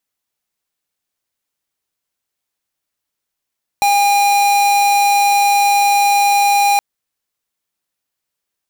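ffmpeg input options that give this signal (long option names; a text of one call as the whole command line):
ffmpeg -f lavfi -i "aevalsrc='0.237*(2*lt(mod(809*t,1),0.5)-1)':duration=2.97:sample_rate=44100" out.wav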